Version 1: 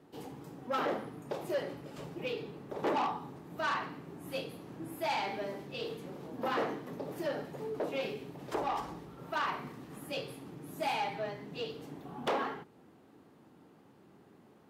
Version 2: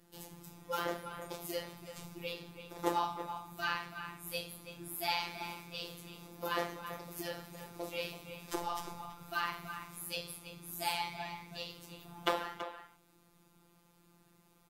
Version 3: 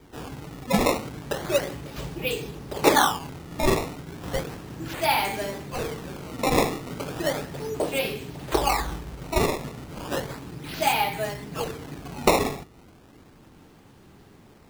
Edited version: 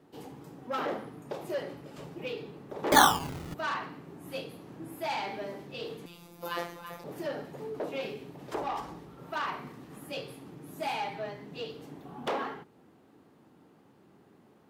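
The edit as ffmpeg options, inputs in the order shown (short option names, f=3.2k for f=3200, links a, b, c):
-filter_complex "[0:a]asplit=3[a][b][c];[a]atrim=end=2.922[d];[2:a]atrim=start=2.918:end=3.542[e];[b]atrim=start=3.538:end=6.062[f];[1:a]atrim=start=6.058:end=7.042[g];[c]atrim=start=7.038[h];[d][e]acrossfade=d=0.004:c1=hsin:c2=hsin[i];[i][f]acrossfade=d=0.004:c1=hsin:c2=hsin[j];[j][g]acrossfade=d=0.004:c1=hsin:c2=hsin[k];[k][h]acrossfade=d=0.004:c1=hsin:c2=hsin"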